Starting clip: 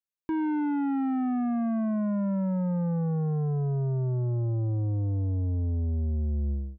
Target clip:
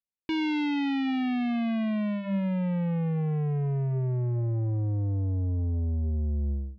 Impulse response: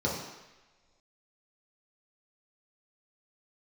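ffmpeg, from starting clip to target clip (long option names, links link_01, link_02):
-af "adynamicsmooth=sensitivity=1.5:basefreq=600,bandreject=frequency=201.1:width_type=h:width=4,bandreject=frequency=402.2:width_type=h:width=4,bandreject=frequency=603.3:width_type=h:width=4,bandreject=frequency=804.4:width_type=h:width=4,bandreject=frequency=1005.5:width_type=h:width=4,bandreject=frequency=1206.6:width_type=h:width=4,bandreject=frequency=1407.7:width_type=h:width=4,bandreject=frequency=1608.8:width_type=h:width=4,bandreject=frequency=1809.9:width_type=h:width=4,bandreject=frequency=2011:width_type=h:width=4,bandreject=frequency=2212.1:width_type=h:width=4,bandreject=frequency=2413.2:width_type=h:width=4,bandreject=frequency=2614.3:width_type=h:width=4,bandreject=frequency=2815.4:width_type=h:width=4,aexciter=amount=6.8:drive=8.7:freq=2100"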